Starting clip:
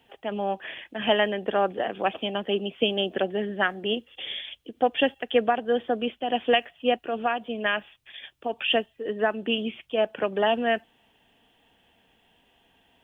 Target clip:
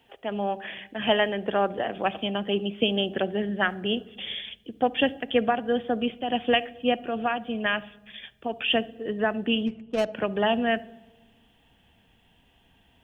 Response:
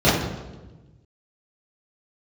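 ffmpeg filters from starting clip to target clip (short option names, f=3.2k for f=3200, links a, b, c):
-filter_complex "[0:a]asplit=3[a][b][c];[a]afade=t=out:st=9.66:d=0.02[d];[b]adynamicsmooth=sensitivity=3:basefreq=530,afade=t=in:st=9.66:d=0.02,afade=t=out:st=10.12:d=0.02[e];[c]afade=t=in:st=10.12:d=0.02[f];[d][e][f]amix=inputs=3:normalize=0,asubboost=boost=2.5:cutoff=230,asplit=2[g][h];[1:a]atrim=start_sample=2205,adelay=33[i];[h][i]afir=irnorm=-1:irlink=0,volume=-42.5dB[j];[g][j]amix=inputs=2:normalize=0"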